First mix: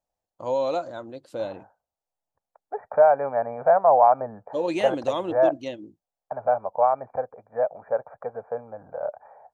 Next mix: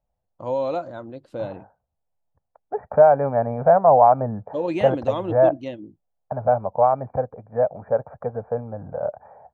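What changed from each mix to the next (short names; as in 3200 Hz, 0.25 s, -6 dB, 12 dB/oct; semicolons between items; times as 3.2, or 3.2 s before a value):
second voice: add low shelf 370 Hz +11.5 dB; master: add tone controls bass +7 dB, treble -11 dB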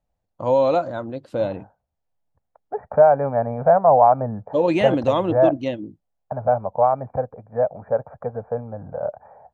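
first voice +7.0 dB; master: add bell 360 Hz -3 dB 0.28 oct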